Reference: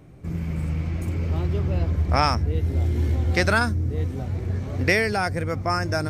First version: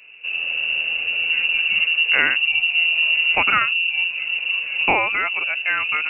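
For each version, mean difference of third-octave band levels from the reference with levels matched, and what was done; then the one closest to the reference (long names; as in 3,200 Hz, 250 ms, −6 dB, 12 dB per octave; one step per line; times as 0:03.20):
17.5 dB: pitch vibrato 1.1 Hz 15 cents
voice inversion scrambler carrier 2,800 Hz
level +2 dB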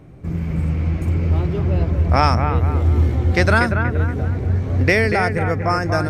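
3.5 dB: high-shelf EQ 3,700 Hz −7.5 dB
on a send: bucket-brigade delay 237 ms, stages 4,096, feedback 42%, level −7 dB
on the sum: level +5 dB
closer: second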